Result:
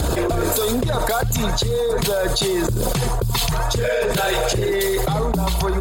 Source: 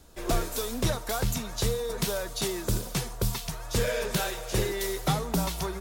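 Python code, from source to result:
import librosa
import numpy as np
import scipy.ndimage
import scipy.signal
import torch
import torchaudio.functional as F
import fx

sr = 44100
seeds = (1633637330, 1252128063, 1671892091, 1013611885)

y = fx.envelope_sharpen(x, sr, power=1.5)
y = scipy.signal.sosfilt(scipy.signal.butter(2, 59.0, 'highpass', fs=sr, output='sos'), y)
y = fx.peak_eq(y, sr, hz=220.0, db=-7.0, octaves=0.96)
y = fx.notch(y, sr, hz=5700.0, q=5.6)
y = y + 10.0 ** (-20.0 / 20.0) * np.pad(y, (int(81 * sr / 1000.0), 0))[:len(y)]
y = fx.env_flatten(y, sr, amount_pct=100)
y = y * librosa.db_to_amplitude(5.0)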